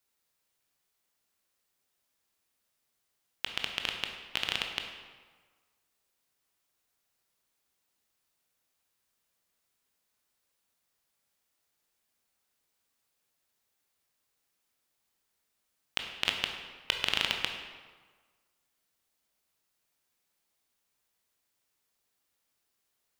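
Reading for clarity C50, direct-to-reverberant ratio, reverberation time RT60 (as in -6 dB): 5.0 dB, 3.0 dB, 1.5 s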